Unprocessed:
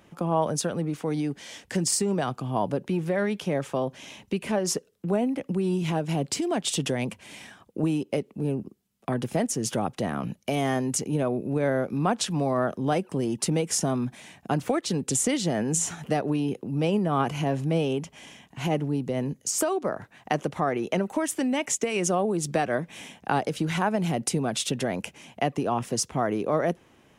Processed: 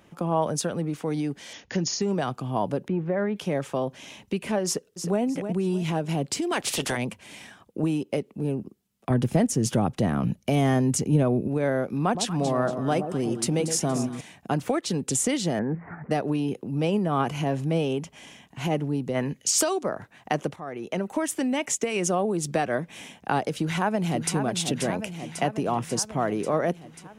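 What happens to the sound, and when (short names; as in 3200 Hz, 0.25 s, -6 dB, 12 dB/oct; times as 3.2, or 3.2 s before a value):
1.53–2.02 brick-wall FIR low-pass 7000 Hz
2.88–3.36 LPF 1600 Hz
4.65–5.21 echo throw 0.31 s, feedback 30%, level -8.5 dB
6.51–6.96 spectral limiter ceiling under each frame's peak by 21 dB
9.1–11.48 low shelf 230 Hz +11 dB
12.03–14.21 echo with dull and thin repeats by turns 0.117 s, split 900 Hz, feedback 60%, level -7.5 dB
15.59–16.11 steep low-pass 2100 Hz 72 dB/oct
19.14–19.82 bell 1300 Hz -> 7700 Hz +12 dB 1.6 oct
20.56–21.18 fade in, from -16 dB
23.57–24.37 echo throw 0.54 s, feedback 70%, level -7.5 dB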